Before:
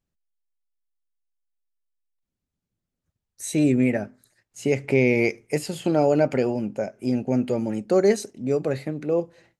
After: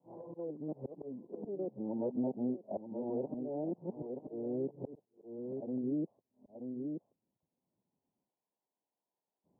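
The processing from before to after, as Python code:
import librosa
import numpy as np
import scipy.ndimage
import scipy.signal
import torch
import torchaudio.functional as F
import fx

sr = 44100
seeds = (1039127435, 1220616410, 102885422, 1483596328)

p1 = x[::-1].copy()
p2 = scipy.signal.sosfilt(scipy.signal.butter(2, 200.0, 'highpass', fs=sr, output='sos'), p1)
p3 = fx.env_lowpass_down(p2, sr, base_hz=500.0, full_db=-17.0)
p4 = fx.auto_swell(p3, sr, attack_ms=728.0)
p5 = scipy.signal.sosfilt(scipy.signal.cheby1(6, 1.0, 1000.0, 'lowpass', fs=sr, output='sos'), p4)
p6 = p5 + fx.echo_single(p5, sr, ms=929, db=-11.5, dry=0)
p7 = fx.band_squash(p6, sr, depth_pct=70)
y = F.gain(torch.from_numpy(p7), -6.0).numpy()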